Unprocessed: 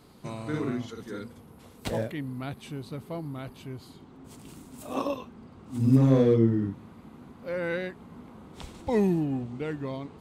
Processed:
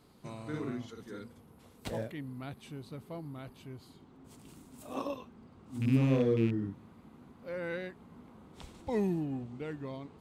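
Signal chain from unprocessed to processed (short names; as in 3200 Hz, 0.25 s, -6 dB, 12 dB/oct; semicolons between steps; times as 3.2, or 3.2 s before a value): rattling part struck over -21 dBFS, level -26 dBFS; gain -7 dB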